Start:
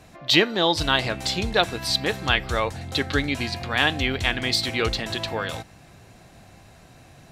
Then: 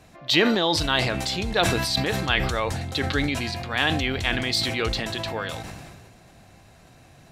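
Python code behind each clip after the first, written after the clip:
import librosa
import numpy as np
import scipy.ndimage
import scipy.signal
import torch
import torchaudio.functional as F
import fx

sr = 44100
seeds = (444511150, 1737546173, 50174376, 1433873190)

y = fx.sustainer(x, sr, db_per_s=30.0)
y = y * librosa.db_to_amplitude(-2.5)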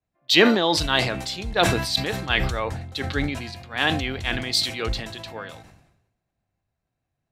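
y = fx.band_widen(x, sr, depth_pct=100)
y = y * librosa.db_to_amplitude(-1.0)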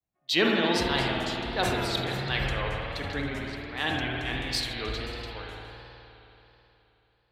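y = fx.rev_spring(x, sr, rt60_s=3.4, pass_ms=(53,), chirp_ms=30, drr_db=-1.0)
y = fx.vibrato(y, sr, rate_hz=1.4, depth_cents=82.0)
y = y * librosa.db_to_amplitude(-8.5)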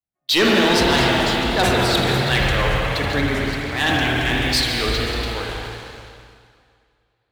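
y = fx.leveller(x, sr, passes=3)
y = fx.rev_plate(y, sr, seeds[0], rt60_s=2.0, hf_ratio=0.9, predelay_ms=115, drr_db=6.5)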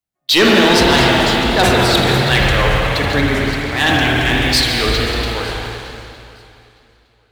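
y = fx.echo_feedback(x, sr, ms=911, feedback_pct=16, wet_db=-22.0)
y = y * librosa.db_to_amplitude(5.0)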